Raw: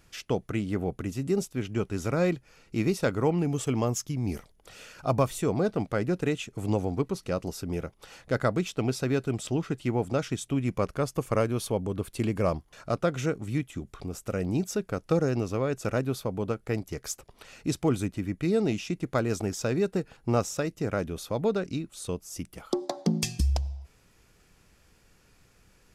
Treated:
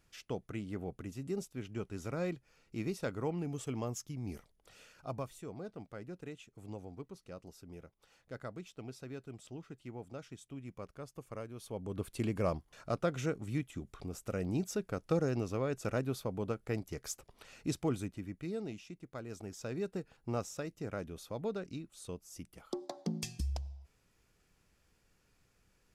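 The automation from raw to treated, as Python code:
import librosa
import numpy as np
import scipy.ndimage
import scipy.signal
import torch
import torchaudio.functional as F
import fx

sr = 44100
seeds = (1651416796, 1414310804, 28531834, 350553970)

y = fx.gain(x, sr, db=fx.line((4.8, -11.0), (5.41, -18.5), (11.55, -18.5), (12.0, -6.5), (17.69, -6.5), (19.09, -19.0), (19.83, -11.0)))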